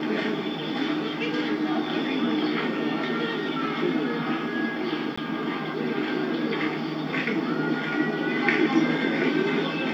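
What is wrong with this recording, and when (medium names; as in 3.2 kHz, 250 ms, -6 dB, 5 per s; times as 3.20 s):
5.16–5.17 s: dropout 15 ms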